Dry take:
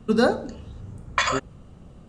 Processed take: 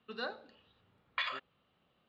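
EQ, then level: band-pass filter 3.8 kHz, Q 2; distance through air 460 m; +2.5 dB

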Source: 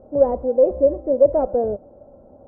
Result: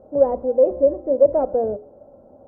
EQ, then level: bass shelf 75 Hz -9 dB; hum notches 60/120/180/240/300/360/420 Hz; 0.0 dB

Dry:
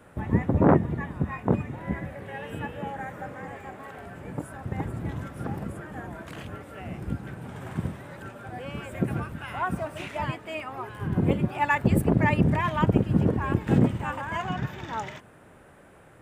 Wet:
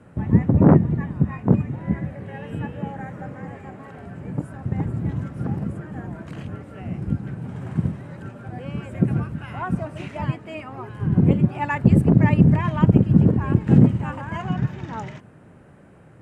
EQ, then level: low-pass 8.7 kHz 12 dB/octave; peaking EQ 150 Hz +11.5 dB 2.4 oct; band-stop 3.5 kHz, Q 13; -2.5 dB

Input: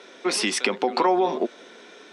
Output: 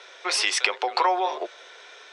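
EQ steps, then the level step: Bessel high-pass 740 Hz, order 6; distance through air 89 m; treble shelf 7.3 kHz +11 dB; +3.0 dB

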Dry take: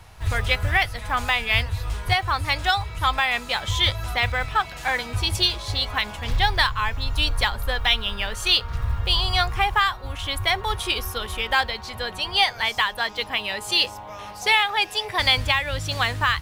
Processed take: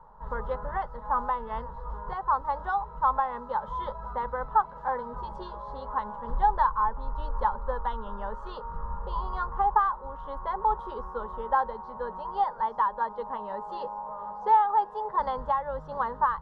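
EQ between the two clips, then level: resonant low-pass 870 Hz, resonance Q 4.1; peaking EQ 89 Hz -14.5 dB 0.61 oct; static phaser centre 480 Hz, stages 8; -3.5 dB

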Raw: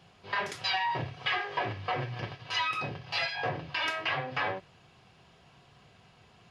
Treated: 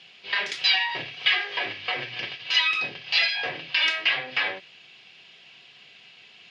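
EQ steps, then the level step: resonant high shelf 1.7 kHz +14 dB, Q 1.5; dynamic bell 2.7 kHz, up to -5 dB, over -30 dBFS, Q 1.8; band-pass 240–4000 Hz; 0.0 dB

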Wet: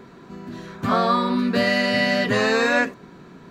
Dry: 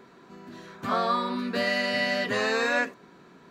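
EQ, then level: bass shelf 190 Hz +12 dB; +5.0 dB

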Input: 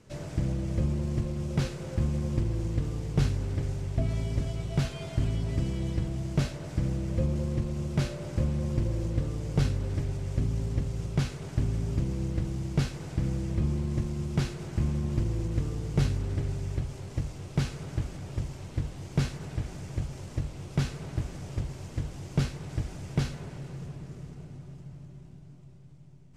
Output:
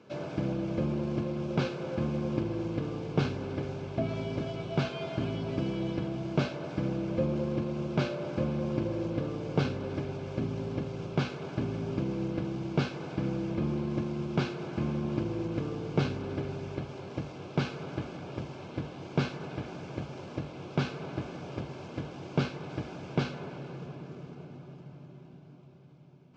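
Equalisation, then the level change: Gaussian low-pass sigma 2 samples; high-pass 230 Hz 12 dB/octave; Butterworth band-stop 1.9 kHz, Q 6.1; +5.5 dB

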